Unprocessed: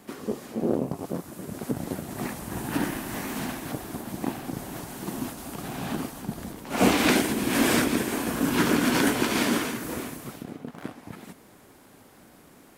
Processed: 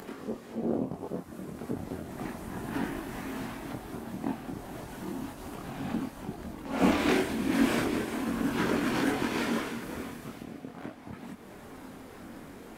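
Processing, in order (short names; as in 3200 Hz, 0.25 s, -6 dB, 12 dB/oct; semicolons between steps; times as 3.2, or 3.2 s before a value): high shelf 4100 Hz -10 dB; upward compressor, threshold -30 dBFS; chorus voices 6, 0.31 Hz, delay 24 ms, depth 2.6 ms; on a send: thin delay 0.186 s, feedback 74%, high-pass 2000 Hz, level -15 dB; on the sum: gain -1.5 dB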